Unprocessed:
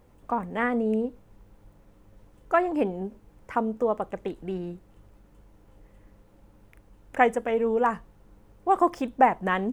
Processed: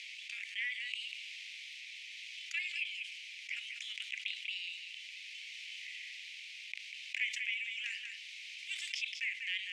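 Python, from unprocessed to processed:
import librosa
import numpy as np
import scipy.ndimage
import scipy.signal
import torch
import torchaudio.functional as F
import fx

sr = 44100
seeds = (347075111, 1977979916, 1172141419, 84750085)

y = scipy.ndimage.median_filter(x, 5, mode='constant')
y = scipy.signal.sosfilt(scipy.signal.butter(12, 2200.0, 'highpass', fs=sr, output='sos'), y)
y = fx.high_shelf(y, sr, hz=6300.0, db=-7.0)
y = fx.rotary(y, sr, hz=0.65)
y = fx.air_absorb(y, sr, metres=100.0)
y = y + 10.0 ** (-18.0 / 20.0) * np.pad(y, (int(193 * sr / 1000.0), 0))[:len(y)]
y = fx.env_flatten(y, sr, amount_pct=70)
y = y * librosa.db_to_amplitude(3.0)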